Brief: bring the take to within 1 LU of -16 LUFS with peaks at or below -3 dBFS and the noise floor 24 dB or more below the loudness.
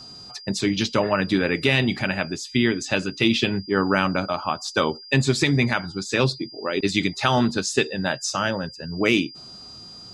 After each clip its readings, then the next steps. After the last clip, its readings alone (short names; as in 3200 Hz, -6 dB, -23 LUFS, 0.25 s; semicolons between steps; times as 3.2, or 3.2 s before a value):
steady tone 4800 Hz; tone level -40 dBFS; loudness -22.5 LUFS; peak -6.0 dBFS; loudness target -16.0 LUFS
-> notch 4800 Hz, Q 30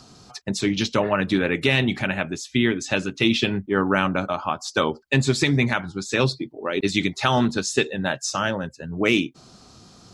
steady tone none; loudness -23.0 LUFS; peak -6.0 dBFS; loudness target -16.0 LUFS
-> gain +7 dB; limiter -3 dBFS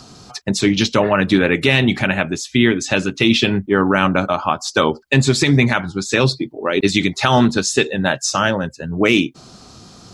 loudness -16.5 LUFS; peak -3.0 dBFS; noise floor -44 dBFS